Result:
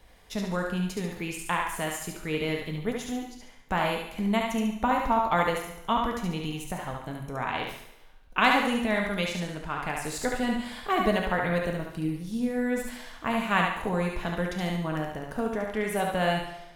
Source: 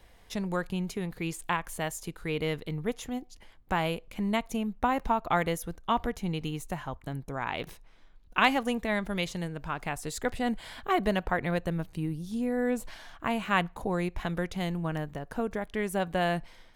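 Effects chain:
0:05.30–0:05.76: noise gate −30 dBFS, range −9 dB
feedback echo with a high-pass in the loop 71 ms, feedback 41%, high-pass 420 Hz, level −3 dB
coupled-rooms reverb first 0.74 s, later 2.1 s, from −23 dB, DRR 4.5 dB

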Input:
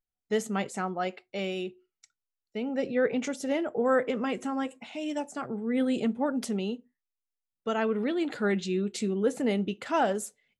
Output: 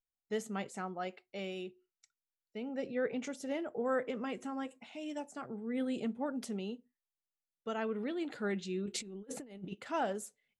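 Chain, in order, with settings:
0:08.86–0:09.75: compressor whose output falls as the input rises −34 dBFS, ratio −0.5
level −8.5 dB

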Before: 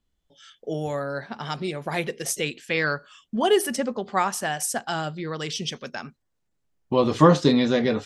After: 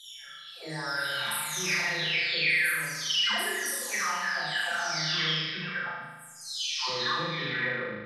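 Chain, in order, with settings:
every frequency bin delayed by itself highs early, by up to 948 ms
drawn EQ curve 140 Hz 0 dB, 230 Hz −5 dB, 660 Hz −2 dB, 1,100 Hz +5 dB, 1,900 Hz +8 dB, 2,900 Hz −4 dB, 4,800 Hz +10 dB, 7,200 Hz +1 dB, 13,000 Hz +15 dB
downward compressor 6 to 1, threshold −29 dBFS, peak gain reduction 15.5 dB
parametric band 2,900 Hz +14 dB 1.6 octaves
flutter between parallel walls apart 6.5 metres, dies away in 1.2 s
level −7.5 dB

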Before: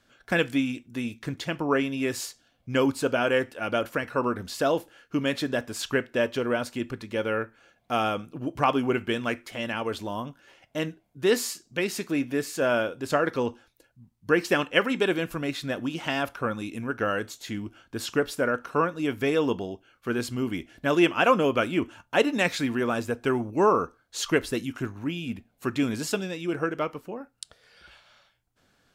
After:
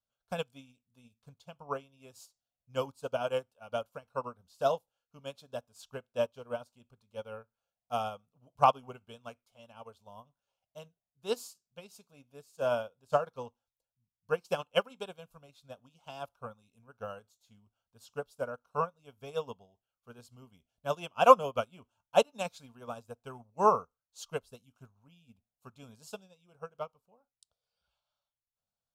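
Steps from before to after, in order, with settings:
phaser with its sweep stopped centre 780 Hz, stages 4
expander for the loud parts 2.5 to 1, over −40 dBFS
level +6.5 dB

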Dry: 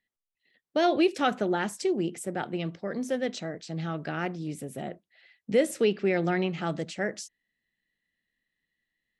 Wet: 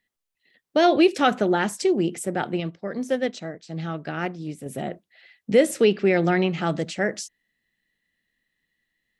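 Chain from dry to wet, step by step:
0:02.60–0:04.66: expander for the loud parts 1.5 to 1, over −49 dBFS
level +6 dB

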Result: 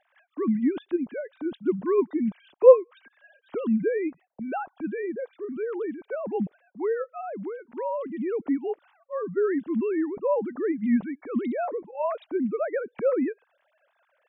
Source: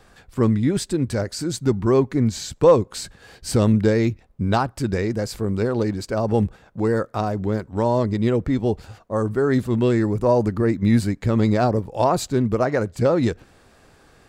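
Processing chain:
three sine waves on the formant tracks
level −6 dB

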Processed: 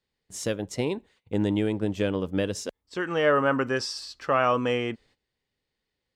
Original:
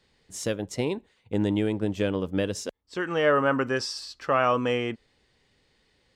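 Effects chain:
noise gate −56 dBFS, range −16 dB

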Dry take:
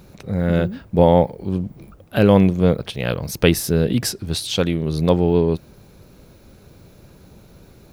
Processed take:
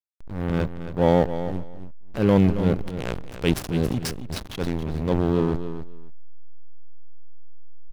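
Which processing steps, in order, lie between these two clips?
slack as between gear wheels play −14.5 dBFS
transient designer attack −8 dB, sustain +4 dB
repeating echo 274 ms, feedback 16%, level −11 dB
level −2.5 dB

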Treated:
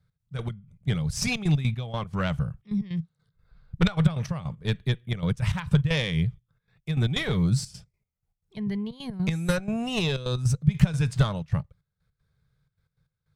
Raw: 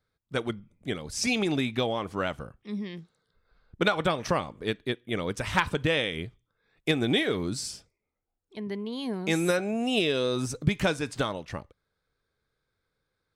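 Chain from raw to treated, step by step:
gate pattern "x.x.x..x.xxxx" 155 BPM −12 dB
harmonic generator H 2 −7 dB, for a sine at −10 dBFS
low shelf with overshoot 210 Hz +11 dB, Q 3

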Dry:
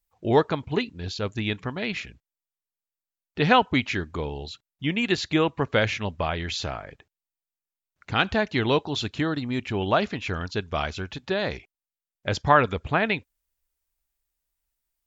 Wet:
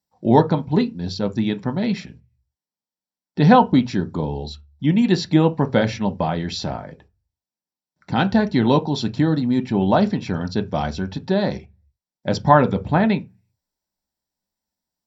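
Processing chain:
0:03.53–0:04.26: parametric band 2,100 Hz −6.5 dB 0.63 octaves
convolution reverb RT60 0.20 s, pre-delay 3 ms, DRR 6.5 dB
level −5.5 dB

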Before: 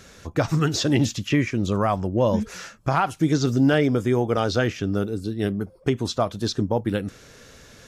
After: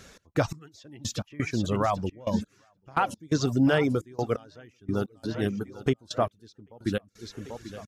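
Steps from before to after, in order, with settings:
repeating echo 790 ms, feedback 46%, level −13.5 dB
reverb reduction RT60 0.66 s
gate pattern "x.x...x.xxx" 86 BPM −24 dB
level −2.5 dB

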